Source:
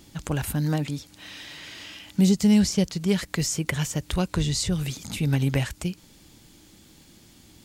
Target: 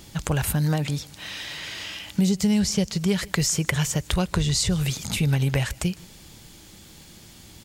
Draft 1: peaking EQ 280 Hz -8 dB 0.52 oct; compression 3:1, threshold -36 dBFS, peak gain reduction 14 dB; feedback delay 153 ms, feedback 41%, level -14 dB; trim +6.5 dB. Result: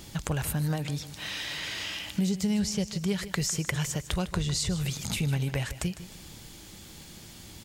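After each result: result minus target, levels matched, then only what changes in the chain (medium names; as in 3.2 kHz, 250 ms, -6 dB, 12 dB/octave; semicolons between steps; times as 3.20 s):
echo-to-direct +10.5 dB; compression: peak gain reduction +6.5 dB
change: feedback delay 153 ms, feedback 41%, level -24.5 dB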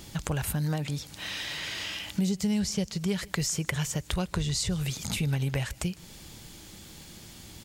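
compression: peak gain reduction +6.5 dB
change: compression 3:1, threshold -26.5 dBFS, peak gain reduction 8 dB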